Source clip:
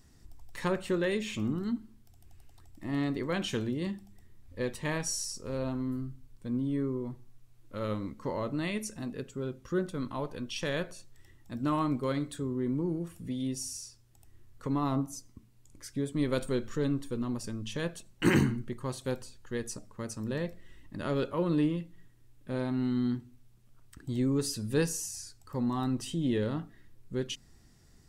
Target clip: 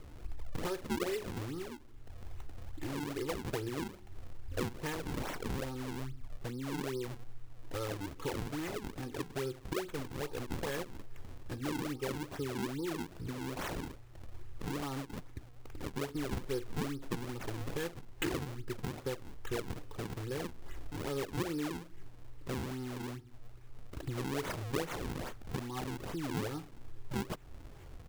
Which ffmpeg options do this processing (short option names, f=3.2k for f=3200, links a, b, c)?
-af "acompressor=threshold=-44dB:ratio=5,aecho=1:1:2.4:0.9,acrusher=samples=42:mix=1:aa=0.000001:lfo=1:lforange=67.2:lforate=2.4,volume=6.5dB"